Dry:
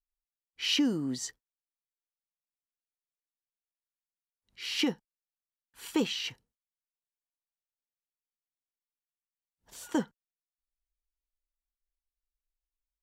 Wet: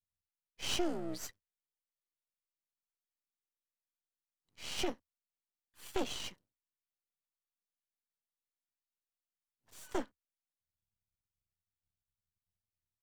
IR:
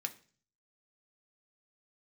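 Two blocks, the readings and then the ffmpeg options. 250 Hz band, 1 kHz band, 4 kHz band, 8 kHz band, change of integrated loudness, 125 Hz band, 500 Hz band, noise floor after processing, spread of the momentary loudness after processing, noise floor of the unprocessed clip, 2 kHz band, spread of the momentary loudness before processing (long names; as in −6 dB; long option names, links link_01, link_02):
−10.5 dB, 0.0 dB, −8.5 dB, −4.5 dB, −8.0 dB, −8.5 dB, −2.5 dB, below −85 dBFS, 18 LU, below −85 dBFS, −8.0 dB, 20 LU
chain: -af "afreqshift=62,aeval=exprs='max(val(0),0)':channel_layout=same,volume=-3dB"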